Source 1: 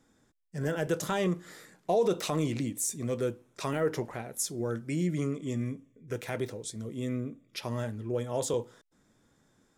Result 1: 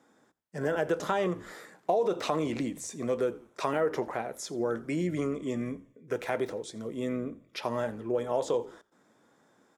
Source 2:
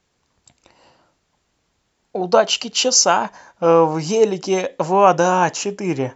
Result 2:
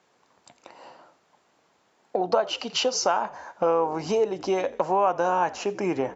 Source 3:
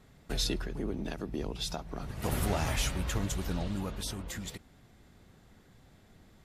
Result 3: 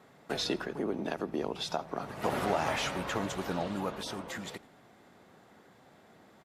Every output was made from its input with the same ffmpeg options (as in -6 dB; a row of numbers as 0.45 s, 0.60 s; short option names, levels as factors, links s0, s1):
-filter_complex "[0:a]highpass=160,acrossover=split=6500[s0][s1];[s1]acompressor=threshold=0.00316:ratio=4:attack=1:release=60[s2];[s0][s2]amix=inputs=2:normalize=0,equalizer=f=820:t=o:w=2.8:g=10,asplit=2[s3][s4];[s4]asplit=2[s5][s6];[s5]adelay=85,afreqshift=-71,volume=0.0841[s7];[s6]adelay=170,afreqshift=-142,volume=0.0279[s8];[s7][s8]amix=inputs=2:normalize=0[s9];[s3][s9]amix=inputs=2:normalize=0,acompressor=threshold=0.0708:ratio=3,volume=0.794"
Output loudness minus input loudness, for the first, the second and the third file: +0.5 LU, -8.5 LU, +0.5 LU